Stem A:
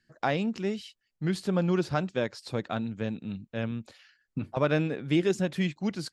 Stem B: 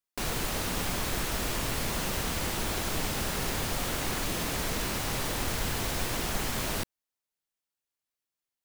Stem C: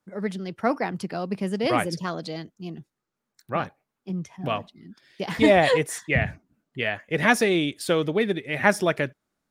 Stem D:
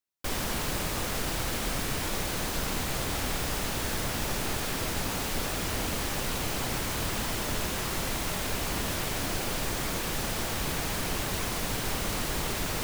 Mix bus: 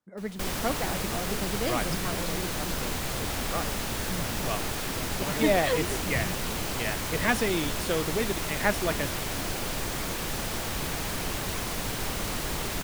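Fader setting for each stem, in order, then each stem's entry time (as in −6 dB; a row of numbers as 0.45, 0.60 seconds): −12.0, −19.0, −6.5, −0.5 decibels; 0.65, 0.00, 0.00, 0.15 seconds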